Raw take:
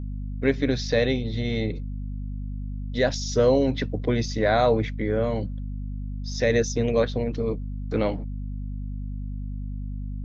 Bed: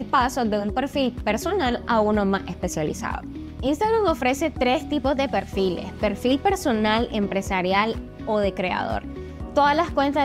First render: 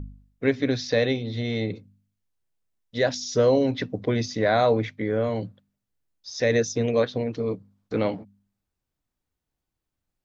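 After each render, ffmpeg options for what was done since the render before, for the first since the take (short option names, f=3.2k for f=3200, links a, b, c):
-af "bandreject=f=50:t=h:w=4,bandreject=f=100:t=h:w=4,bandreject=f=150:t=h:w=4,bandreject=f=200:t=h:w=4,bandreject=f=250:t=h:w=4"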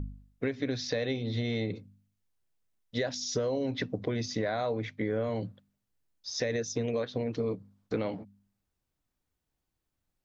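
-af "alimiter=limit=-15.5dB:level=0:latency=1:release=428,acompressor=threshold=-27dB:ratio=6"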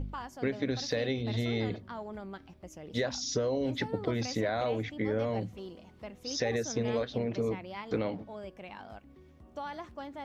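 -filter_complex "[1:a]volume=-21.5dB[a];[0:a][a]amix=inputs=2:normalize=0"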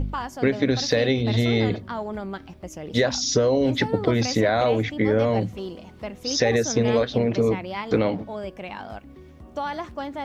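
-af "volume=10.5dB"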